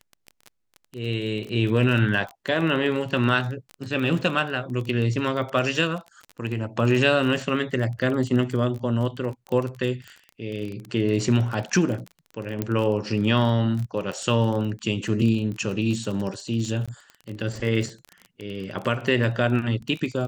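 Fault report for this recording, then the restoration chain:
crackle 25 per s -29 dBFS
12.62 s: pop -12 dBFS
16.86–16.88 s: dropout 16 ms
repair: de-click; interpolate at 16.86 s, 16 ms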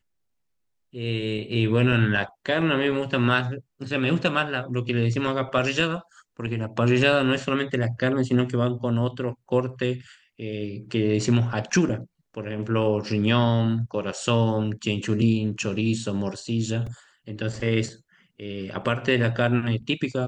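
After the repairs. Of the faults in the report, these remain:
nothing left

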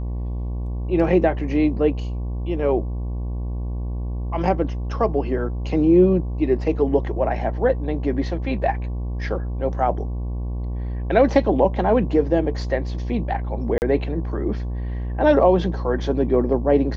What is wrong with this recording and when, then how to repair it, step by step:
buzz 60 Hz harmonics 19 -26 dBFS
13.78–13.82 s: dropout 39 ms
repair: de-hum 60 Hz, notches 19; interpolate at 13.78 s, 39 ms

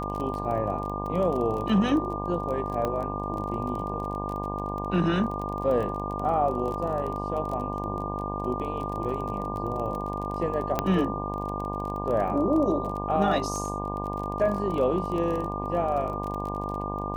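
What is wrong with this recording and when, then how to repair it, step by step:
buzz 50 Hz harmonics 21 -33 dBFS
crackle 25 per s -32 dBFS
whine 1.2 kHz -33 dBFS
2.85 s: pop -16 dBFS
10.79 s: pop -10 dBFS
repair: de-click; band-stop 1.2 kHz, Q 30; de-hum 50 Hz, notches 21

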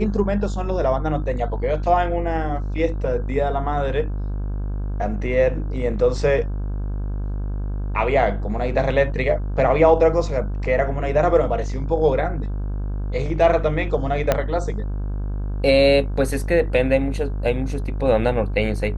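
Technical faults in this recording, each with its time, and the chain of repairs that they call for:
buzz 50 Hz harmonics 33 -25 dBFS
14.32 s: pop -4 dBFS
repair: de-click; de-hum 50 Hz, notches 33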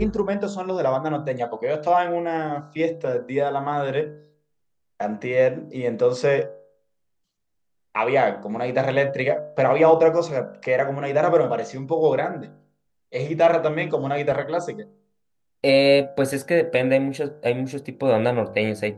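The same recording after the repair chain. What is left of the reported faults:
14.32 s: pop

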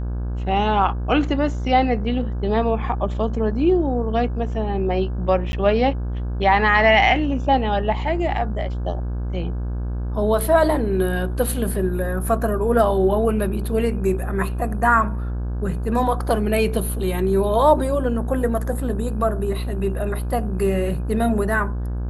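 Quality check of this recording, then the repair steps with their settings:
buzz 60 Hz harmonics 28 -25 dBFS
5.52–5.53 s: dropout 11 ms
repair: de-hum 60 Hz, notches 28; interpolate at 5.52 s, 11 ms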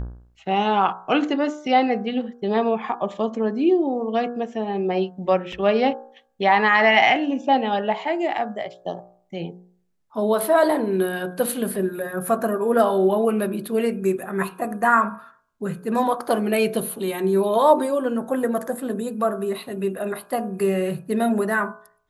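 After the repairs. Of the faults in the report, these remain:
nothing left

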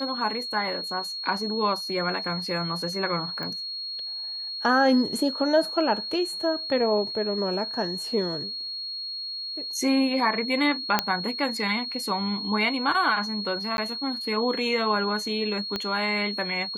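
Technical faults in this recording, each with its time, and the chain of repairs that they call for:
whine 4.3 kHz -31 dBFS
3.43 s: pop -21 dBFS
10.99 s: pop -5 dBFS
13.77–13.78 s: dropout 11 ms
15.76 s: pop -14 dBFS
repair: de-click; band-stop 4.3 kHz, Q 30; interpolate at 13.77 s, 11 ms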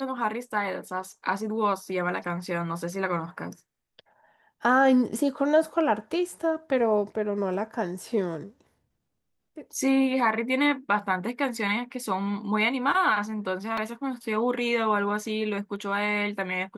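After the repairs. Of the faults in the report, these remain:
15.76 s: pop

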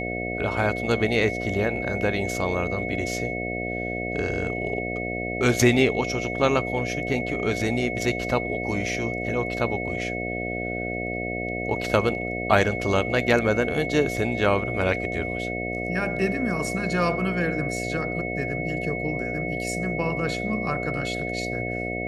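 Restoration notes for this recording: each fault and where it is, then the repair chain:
buzz 60 Hz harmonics 12 -31 dBFS
whine 2.2 kHz -31 dBFS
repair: de-hum 60 Hz, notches 12; band-stop 2.2 kHz, Q 30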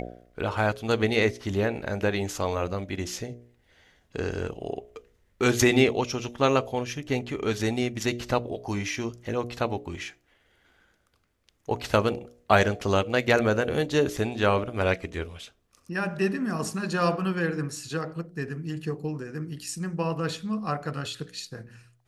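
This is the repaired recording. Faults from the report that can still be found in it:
nothing left

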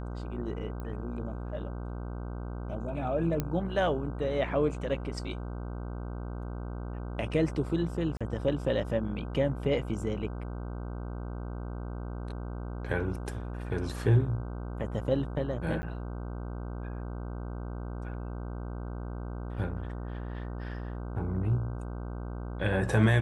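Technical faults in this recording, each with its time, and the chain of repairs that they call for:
buzz 60 Hz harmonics 26 -37 dBFS
0.80 s: pop -28 dBFS
3.40 s: pop -16 dBFS
8.17–8.21 s: dropout 36 ms
15.82–15.83 s: dropout 10 ms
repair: de-click; de-hum 60 Hz, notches 26; interpolate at 8.17 s, 36 ms; interpolate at 15.82 s, 10 ms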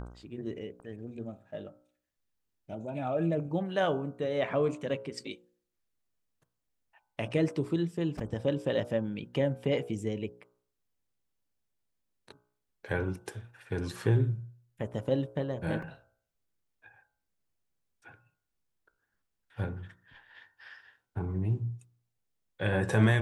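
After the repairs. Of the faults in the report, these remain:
nothing left

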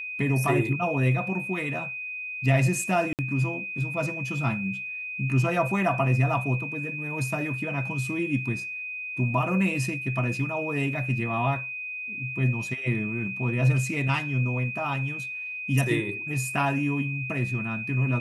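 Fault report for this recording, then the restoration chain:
whine 2.5 kHz -32 dBFS
3.13–3.19 s: dropout 58 ms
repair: band-stop 2.5 kHz, Q 30; interpolate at 3.13 s, 58 ms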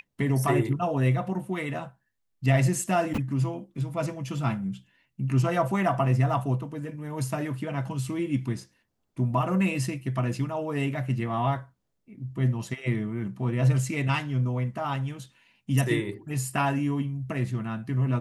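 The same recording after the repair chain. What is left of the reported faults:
nothing left

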